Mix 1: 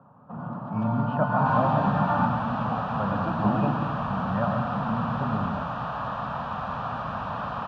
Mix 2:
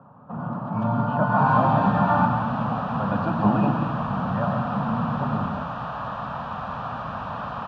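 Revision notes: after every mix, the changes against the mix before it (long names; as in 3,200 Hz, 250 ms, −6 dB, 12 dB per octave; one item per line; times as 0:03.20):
first sound +4.5 dB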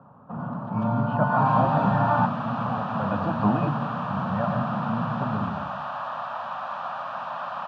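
first sound: send off
second sound: add Butterworth high-pass 540 Hz 96 dB per octave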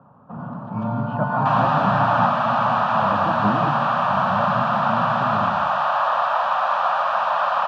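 second sound +12.0 dB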